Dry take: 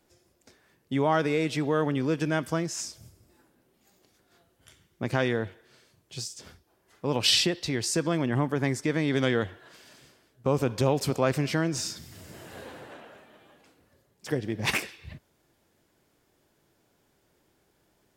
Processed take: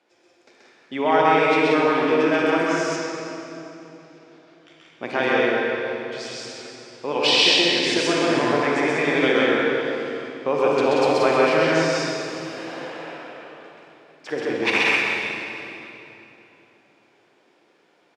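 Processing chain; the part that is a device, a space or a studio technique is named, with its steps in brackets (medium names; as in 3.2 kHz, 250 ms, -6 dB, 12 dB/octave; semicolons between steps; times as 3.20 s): station announcement (band-pass 390–4000 Hz; peaking EQ 2.4 kHz +5 dB 0.23 oct; loudspeakers at several distances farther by 45 m -1 dB, 62 m -3 dB; reverberation RT60 3.2 s, pre-delay 33 ms, DRR -1 dB); 2.96–5.02 s: low-pass 6.7 kHz 12 dB/octave; trim +4 dB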